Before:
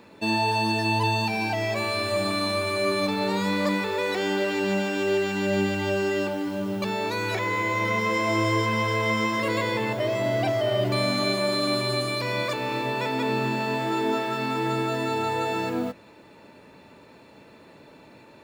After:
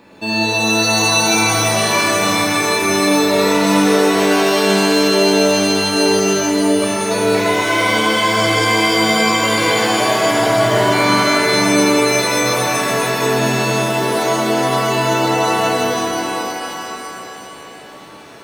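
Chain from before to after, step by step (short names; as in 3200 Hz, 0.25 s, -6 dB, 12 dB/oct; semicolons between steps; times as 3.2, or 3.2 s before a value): shimmer reverb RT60 3 s, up +7 st, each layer -2 dB, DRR -4 dB; gain +3 dB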